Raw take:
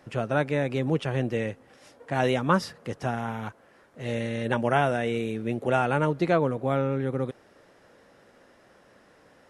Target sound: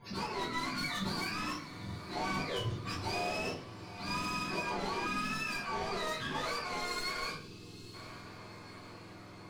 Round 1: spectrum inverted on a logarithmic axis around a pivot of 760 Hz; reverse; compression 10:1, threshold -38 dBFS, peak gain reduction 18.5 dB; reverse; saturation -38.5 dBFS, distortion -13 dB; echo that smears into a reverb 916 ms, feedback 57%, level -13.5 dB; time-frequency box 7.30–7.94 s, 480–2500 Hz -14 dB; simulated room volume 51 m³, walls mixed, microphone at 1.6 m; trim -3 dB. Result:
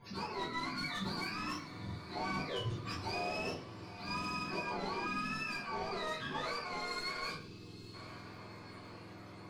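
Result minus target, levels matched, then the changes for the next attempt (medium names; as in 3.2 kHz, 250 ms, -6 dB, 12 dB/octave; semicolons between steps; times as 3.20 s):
compression: peak gain reduction +6 dB
change: compression 10:1, threshold -31.5 dBFS, peak gain reduction 12.5 dB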